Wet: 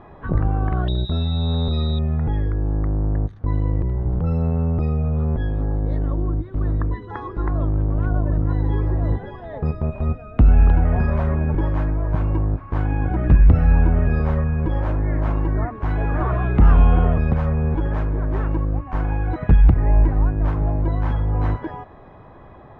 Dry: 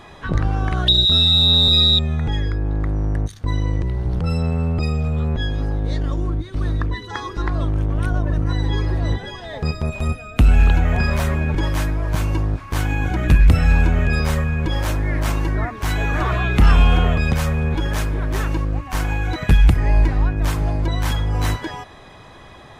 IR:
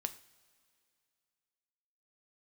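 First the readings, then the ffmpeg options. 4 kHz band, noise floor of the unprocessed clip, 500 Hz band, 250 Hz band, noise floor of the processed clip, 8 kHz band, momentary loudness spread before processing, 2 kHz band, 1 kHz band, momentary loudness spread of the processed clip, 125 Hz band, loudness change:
under -20 dB, -41 dBFS, 0.0 dB, 0.0 dB, -42 dBFS, under -30 dB, 10 LU, -9.0 dB, -2.0 dB, 9 LU, 0.0 dB, -2.0 dB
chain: -af "lowpass=1100"

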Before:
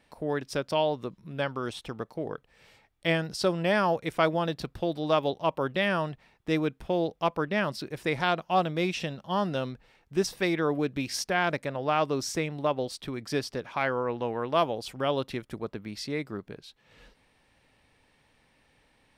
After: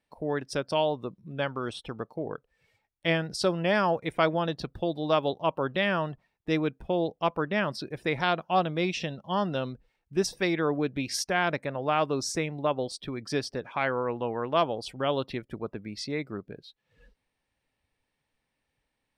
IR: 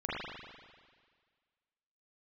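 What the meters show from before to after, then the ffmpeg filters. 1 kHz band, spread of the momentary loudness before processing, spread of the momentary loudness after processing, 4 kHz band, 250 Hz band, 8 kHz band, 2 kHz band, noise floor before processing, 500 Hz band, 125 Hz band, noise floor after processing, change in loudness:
0.0 dB, 11 LU, 11 LU, +0.5 dB, 0.0 dB, +1.5 dB, 0.0 dB, -67 dBFS, 0.0 dB, 0.0 dB, -82 dBFS, 0.0 dB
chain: -af "afftdn=nr=16:nf=-49,highshelf=f=7500:g=4.5"

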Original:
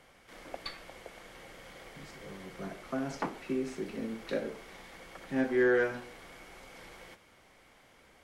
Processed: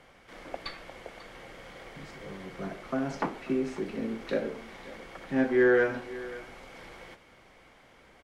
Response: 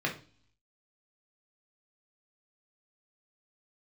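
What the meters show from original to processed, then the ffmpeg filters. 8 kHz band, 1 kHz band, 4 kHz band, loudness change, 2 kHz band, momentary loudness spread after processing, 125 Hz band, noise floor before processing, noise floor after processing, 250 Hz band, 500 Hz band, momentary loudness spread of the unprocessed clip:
no reading, +4.0 dB, +1.5 dB, +3.5 dB, +3.5 dB, 22 LU, +4.0 dB, -61 dBFS, -58 dBFS, +4.0 dB, +4.0 dB, 22 LU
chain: -af "lowpass=f=4000:p=1,aecho=1:1:542:0.133,volume=1.58"

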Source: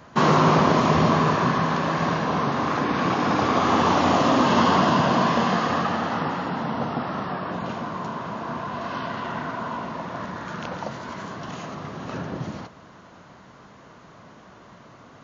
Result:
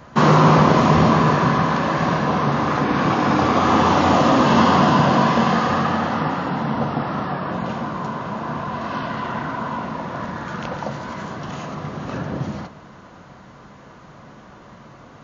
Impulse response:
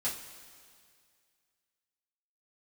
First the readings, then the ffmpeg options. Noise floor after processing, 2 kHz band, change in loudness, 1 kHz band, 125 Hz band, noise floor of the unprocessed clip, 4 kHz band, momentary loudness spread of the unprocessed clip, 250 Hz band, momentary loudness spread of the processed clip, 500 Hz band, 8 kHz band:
-44 dBFS, +3.5 dB, +4.0 dB, +3.5 dB, +6.0 dB, -48 dBFS, +2.0 dB, 15 LU, +4.5 dB, 15 LU, +3.5 dB, no reading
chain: -filter_complex "[0:a]lowshelf=f=83:g=7,asplit=2[s0][s1];[1:a]atrim=start_sample=2205,lowpass=2800[s2];[s1][s2]afir=irnorm=-1:irlink=0,volume=0.282[s3];[s0][s3]amix=inputs=2:normalize=0,volume=1.26"

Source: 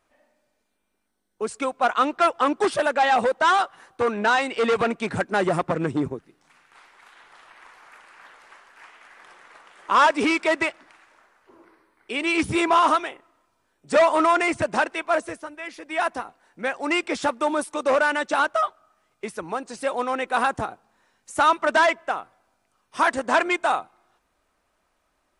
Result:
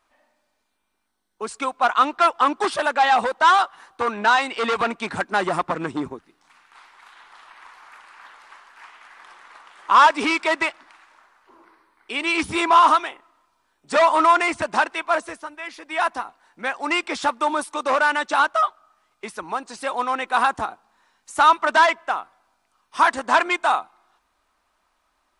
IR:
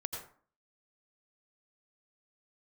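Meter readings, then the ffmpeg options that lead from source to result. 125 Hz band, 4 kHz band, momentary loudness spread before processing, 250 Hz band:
no reading, +3.5 dB, 13 LU, -2.5 dB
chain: -af "equalizer=f=125:t=o:w=1:g=-9,equalizer=f=500:t=o:w=1:g=-5,equalizer=f=1000:t=o:w=1:g=6,equalizer=f=4000:t=o:w=1:g=4"

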